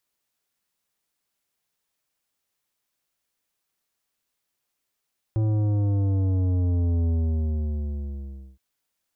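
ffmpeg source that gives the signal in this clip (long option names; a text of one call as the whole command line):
ffmpeg -f lavfi -i "aevalsrc='0.0891*clip((3.22-t)/1.5,0,1)*tanh(3.55*sin(2*PI*110*3.22/log(65/110)*(exp(log(65/110)*t/3.22)-1)))/tanh(3.55)':duration=3.22:sample_rate=44100" out.wav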